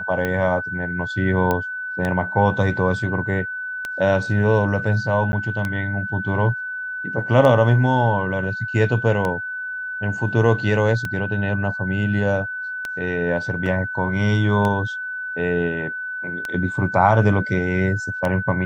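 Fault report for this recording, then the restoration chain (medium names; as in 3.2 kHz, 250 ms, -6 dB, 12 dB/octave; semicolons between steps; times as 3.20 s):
tick 33 1/3 rpm -11 dBFS
whine 1.5 kHz -26 dBFS
1.51 s: pop -8 dBFS
5.32–5.33 s: dropout 10 ms
13.66 s: dropout 2.4 ms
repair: de-click; band-stop 1.5 kHz, Q 30; interpolate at 5.32 s, 10 ms; interpolate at 13.66 s, 2.4 ms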